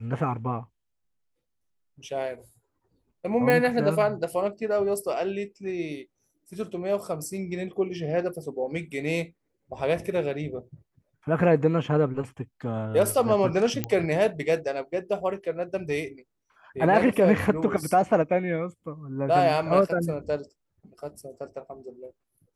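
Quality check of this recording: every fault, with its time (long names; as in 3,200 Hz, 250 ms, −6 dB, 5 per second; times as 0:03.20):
0:03.50: click −11 dBFS
0:13.84: click −11 dBFS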